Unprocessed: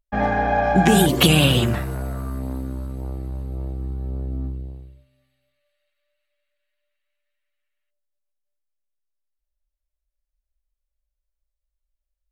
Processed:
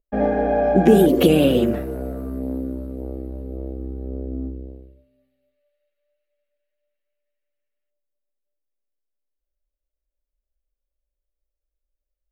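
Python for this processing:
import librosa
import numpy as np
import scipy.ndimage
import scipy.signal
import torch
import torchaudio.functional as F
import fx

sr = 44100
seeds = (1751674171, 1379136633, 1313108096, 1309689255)

y = fx.graphic_eq(x, sr, hz=(125, 250, 500, 1000, 2000, 4000, 8000), db=(-11, 7, 11, -10, -4, -7, -11))
y = F.gain(torch.from_numpy(y), -1.5).numpy()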